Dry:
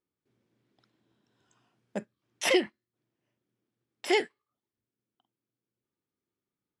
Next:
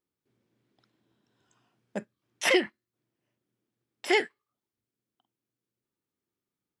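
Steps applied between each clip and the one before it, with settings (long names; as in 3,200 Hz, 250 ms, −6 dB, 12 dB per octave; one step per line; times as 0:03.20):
dynamic equaliser 1,600 Hz, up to +6 dB, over −43 dBFS, Q 1.4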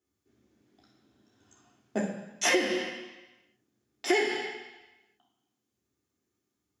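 convolution reverb RT60 1.0 s, pre-delay 3 ms, DRR −3.5 dB
downward compressor 6 to 1, threshold −17 dBFS, peak gain reduction 10.5 dB
level −5 dB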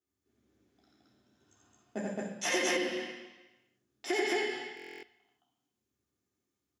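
on a send: loudspeakers that aren't time-aligned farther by 30 metres −2 dB, 75 metres 0 dB
on the sum: buffer that repeats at 0:04.75, samples 1,024, times 11
level −7.5 dB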